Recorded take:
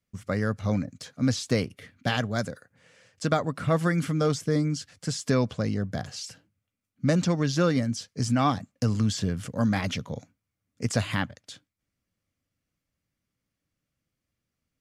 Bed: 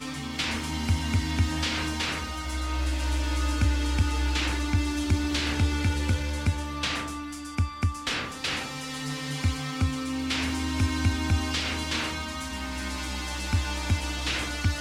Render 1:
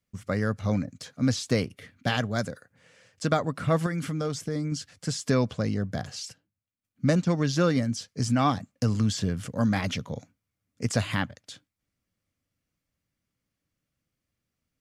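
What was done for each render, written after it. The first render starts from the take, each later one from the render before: 3.86–4.72 compressor 2.5:1, threshold -28 dBFS; 6.26–7.3 transient shaper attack +1 dB, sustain -11 dB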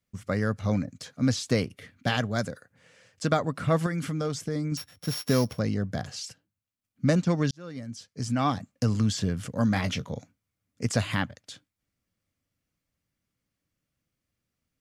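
4.77–5.59 sample sorter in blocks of 8 samples; 7.51–8.72 fade in; 9.72–10.14 doubler 22 ms -11 dB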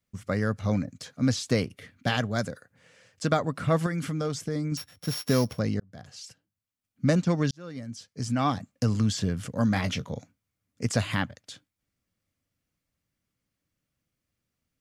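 5.8–7.07 fade in equal-power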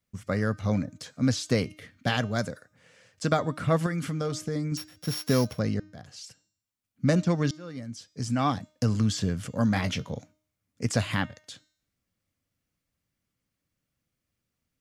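de-hum 308 Hz, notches 26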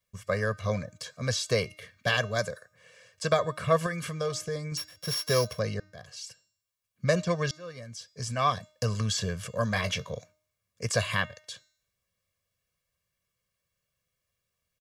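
low shelf 380 Hz -7.5 dB; comb 1.8 ms, depth 86%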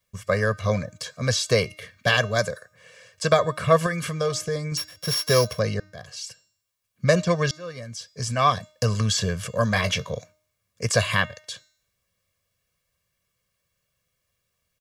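gain +6 dB

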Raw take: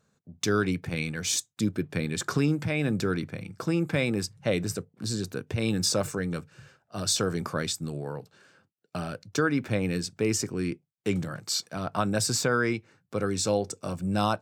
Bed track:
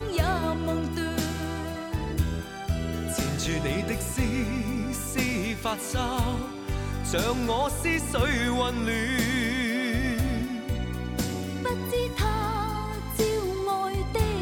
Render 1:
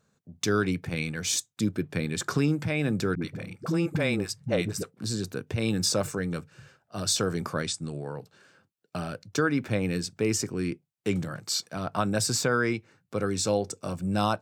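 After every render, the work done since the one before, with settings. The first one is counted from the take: 3.15–4.94 dispersion highs, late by 64 ms, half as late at 330 Hz; 7.62–8.18 Chebyshev low-pass 11000 Hz, order 10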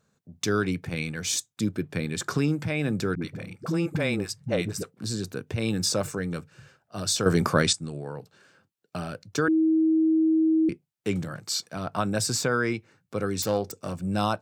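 7.26–7.73 gain +8.5 dB; 9.48–10.69 bleep 319 Hz -18 dBFS; 13.42–14.08 self-modulated delay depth 0.1 ms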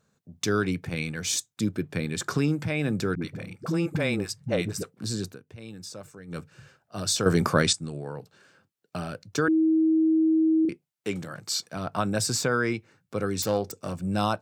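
5.26–6.39 dip -15 dB, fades 0.12 s; 10.65–11.38 low shelf 190 Hz -10 dB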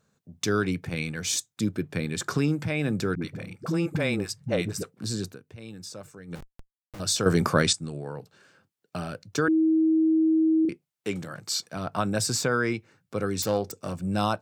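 6.35–7 Schmitt trigger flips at -40 dBFS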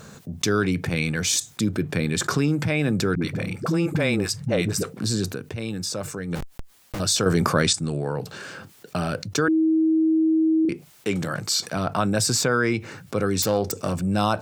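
fast leveller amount 50%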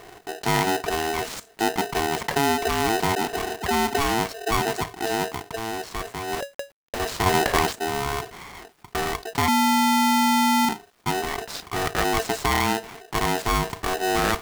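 median filter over 15 samples; polarity switched at an audio rate 560 Hz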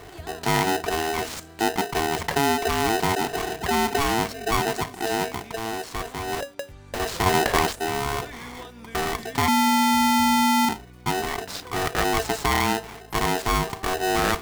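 add bed track -15.5 dB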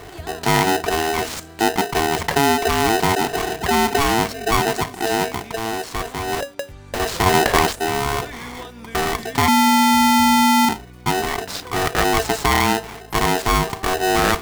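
gain +5 dB; limiter -3 dBFS, peak gain reduction 1 dB

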